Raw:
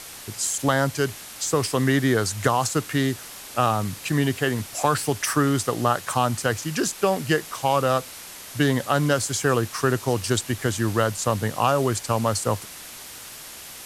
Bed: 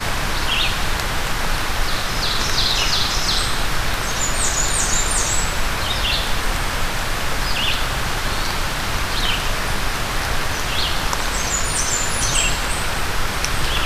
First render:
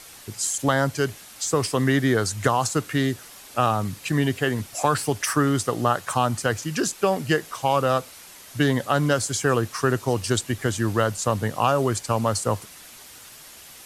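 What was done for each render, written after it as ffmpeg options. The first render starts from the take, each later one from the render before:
-af "afftdn=nr=6:nf=-40"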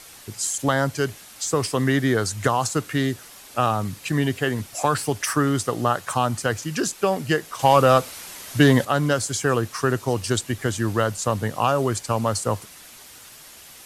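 -filter_complex "[0:a]asettb=1/sr,asplit=3[a][b][c];[a]atrim=end=7.594[d];[b]atrim=start=7.59:end=8.85,asetpts=PTS-STARTPTS,afade=t=in:d=0.004:c=qsin,afade=t=out:st=1.256:d=0.004:c=qsin,acontrast=67[e];[c]atrim=start=8.846[f];[d][e]acrossfade=d=0.004:c1=hsin:c2=qsin[g];[g][f]acrossfade=d=0.004:c1=qsin:c2=hsin"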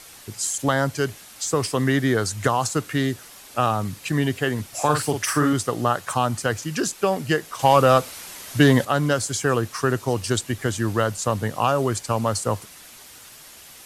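-filter_complex "[0:a]asettb=1/sr,asplit=3[a][b][c];[a]atrim=end=4.694[d];[b]atrim=start=4.69:end=5.53,asetpts=PTS-STARTPTS,afade=t=in:d=0.004:c=qsin,afade=t=out:st=0.836:d=0.004:c=qsin,asplit=2[e][f];[f]adelay=47,volume=-5.5dB[g];[e][g]amix=inputs=2:normalize=0,atrim=end_sample=37044[h];[c]atrim=start=5.526[i];[d][h]acrossfade=d=0.004:c1=hsin:c2=qsin[j];[j][i]acrossfade=d=0.004:c1=qsin:c2=hsin"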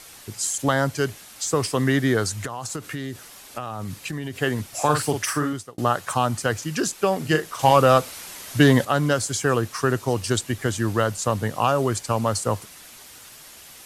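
-filter_complex "[0:a]asettb=1/sr,asplit=3[a][b][c];[a]atrim=end=2.374[d];[b]atrim=start=2.37:end=4.37,asetpts=PTS-STARTPTS,afade=t=in:d=0.004:c=qsin,afade=t=out:st=1.996:d=0.004:c=qsin,acompressor=threshold=-26dB:ratio=10:attack=3.2:release=140:knee=1:detection=peak[e];[c]atrim=start=4.366[f];[d][e]acrossfade=d=0.004:c1=hsin:c2=qsin[g];[g][f]acrossfade=d=0.004:c1=qsin:c2=hsin,asettb=1/sr,asplit=3[h][i][j];[h]atrim=end=7.174[k];[i]atrim=start=7.17:end=7.71,asetpts=PTS-STARTPTS,afade=t=in:d=0.004:c=qsin,afade=t=out:st=0.536:d=0.004:c=qsin,asplit=2[l][m];[m]adelay=38,volume=-6.5dB[n];[l][n]amix=inputs=2:normalize=0,atrim=end_sample=23814[o];[j]atrim=start=7.706[p];[k][o]acrossfade=d=0.004:c1=hsin:c2=qsin[q];[q][p]acrossfade=d=0.004:c1=qsin:c2=hsin,asplit=2[r][s];[r]atrim=end=5.78,asetpts=PTS-STARTPTS,afade=t=out:st=5.19:d=0.59[t];[s]atrim=start=5.78,asetpts=PTS-STARTPTS,afade=t=in:d=0.004:c=hsin[u];[t][u]concat=n=2:v=0:a=1"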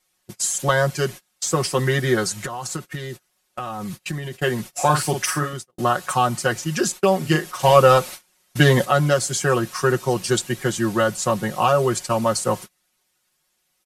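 -af "agate=range=-28dB:threshold=-33dB:ratio=16:detection=peak,aecho=1:1:5.5:0.9"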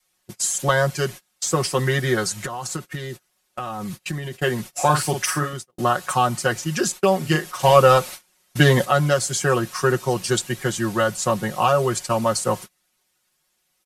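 -af "adynamicequalizer=threshold=0.0282:dfrequency=290:dqfactor=1.1:tfrequency=290:tqfactor=1.1:attack=5:release=100:ratio=0.375:range=2:mode=cutabove:tftype=bell"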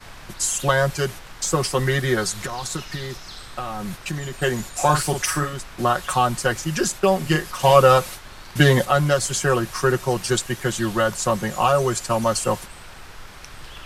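-filter_complex "[1:a]volume=-19.5dB[a];[0:a][a]amix=inputs=2:normalize=0"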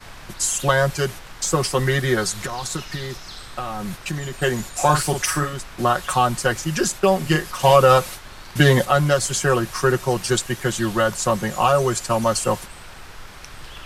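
-af "volume=1dB,alimiter=limit=-3dB:level=0:latency=1"

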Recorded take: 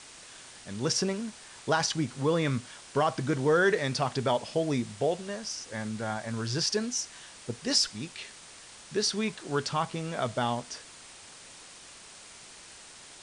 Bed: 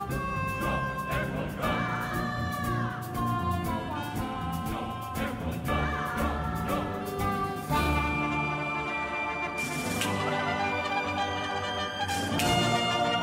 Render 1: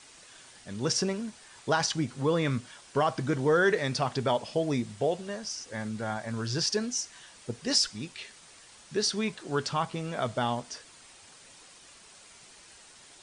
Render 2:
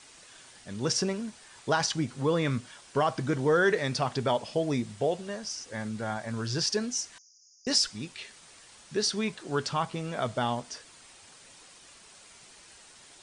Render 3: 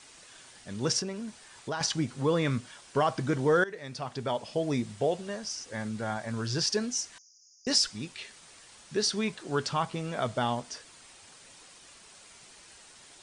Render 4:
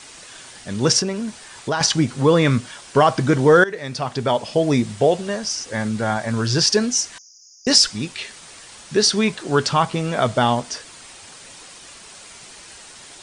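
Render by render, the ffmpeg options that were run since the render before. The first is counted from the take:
-af "afftdn=nr=6:nf=-50"
-filter_complex "[0:a]asettb=1/sr,asplit=3[a][b][c];[a]atrim=end=7.184[d];[b]atrim=start=7.18:end=7.67,asetpts=PTS-STARTPTS,afade=t=in:d=0.004:c=qsin,afade=t=out:st=0.486:d=0.004:c=qsin,asuperpass=centerf=5800:order=20:qfactor=2.8[e];[c]atrim=start=7.666[f];[d][e]acrossfade=d=0.004:c1=hsin:c2=qsin[g];[g][f]acrossfade=d=0.004:c1=qsin:c2=hsin"
-filter_complex "[0:a]asettb=1/sr,asplit=3[a][b][c];[a]atrim=end=0.994[d];[b]atrim=start=0.99:end=1.81,asetpts=PTS-STARTPTS,afade=t=in:d=0.004:c=qsin,afade=t=out:st=0.816:d=0.004:c=qsin,acompressor=threshold=-35dB:ratio=2:attack=3.2:release=140:knee=1:detection=peak[e];[c]atrim=start=1.806[f];[d][e]acrossfade=d=0.004:c1=hsin:c2=qsin[g];[g][f]acrossfade=d=0.004:c1=qsin:c2=hsin,asplit=2[h][i];[h]atrim=end=3.64,asetpts=PTS-STARTPTS,afade=t=out:st=3.636:d=0.004:c=hsin:silence=0.112202[j];[i]atrim=start=3.64,asetpts=PTS-STARTPTS,afade=t=in:d=1.17:silence=0.112202[k];[j][k]concat=n=2:v=0:a=1"
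-af "volume=11.5dB,alimiter=limit=-2dB:level=0:latency=1"

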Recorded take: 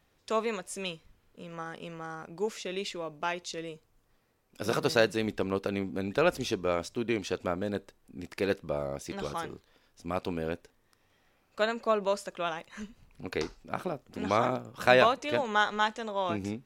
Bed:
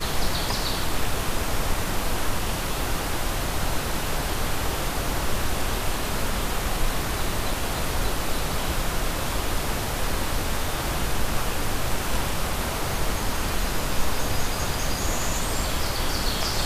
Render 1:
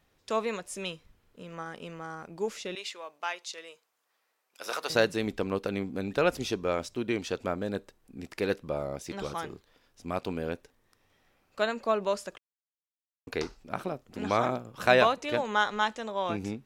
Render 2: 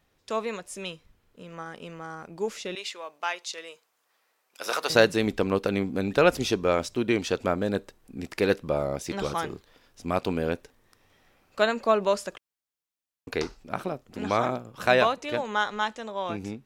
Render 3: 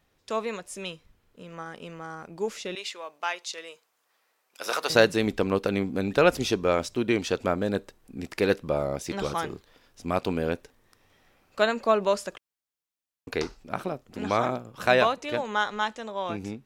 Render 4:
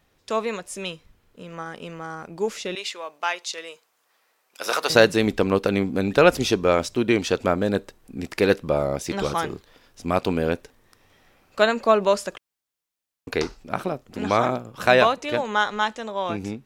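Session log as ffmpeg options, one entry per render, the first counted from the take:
-filter_complex "[0:a]asettb=1/sr,asplit=3[a][b][c];[a]atrim=end=2.754[d];[b]atrim=start=2.75:end=4.9,asetpts=PTS-STARTPTS,afade=t=in:d=0.004:c=qsin,afade=t=out:st=2.146:d=0.004:c=qsin,highpass=760[e];[c]atrim=start=4.896[f];[d][e]acrossfade=d=0.004:c1=hsin:c2=qsin[g];[g][f]acrossfade=d=0.004:c1=qsin:c2=hsin,asplit=3[h][i][j];[h]atrim=end=12.38,asetpts=PTS-STARTPTS,afade=t=out:st=12.376:d=0.004:c=hsin[k];[i]atrim=start=12.38:end=13.27,asetpts=PTS-STARTPTS,volume=0[l];[j]atrim=start=13.27,asetpts=PTS-STARTPTS,afade=t=in:d=0.004:c=hsin[m];[k][l][m]concat=n=3:v=0:a=1"
-af "dynaudnorm=f=350:g=17:m=6dB"
-af anull
-af "volume=4.5dB,alimiter=limit=-2dB:level=0:latency=1"

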